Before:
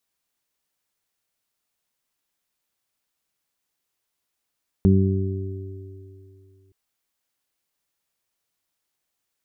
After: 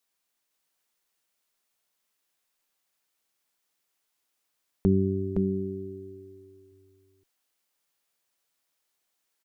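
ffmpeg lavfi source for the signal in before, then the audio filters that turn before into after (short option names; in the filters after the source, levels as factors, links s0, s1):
-f lavfi -i "aevalsrc='0.178*pow(10,-3*t/2.7)*sin(2*PI*96*t)+0.211*pow(10,-3*t/1.39)*sin(2*PI*192*t)+0.0531*pow(10,-3*t/2.64)*sin(2*PI*288*t)+0.0794*pow(10,-3*t/2.8)*sin(2*PI*384*t)':d=1.87:s=44100"
-filter_complex "[0:a]equalizer=f=62:t=o:w=2.9:g=-10,asplit=2[s0][s1];[s1]aecho=0:1:515:0.631[s2];[s0][s2]amix=inputs=2:normalize=0"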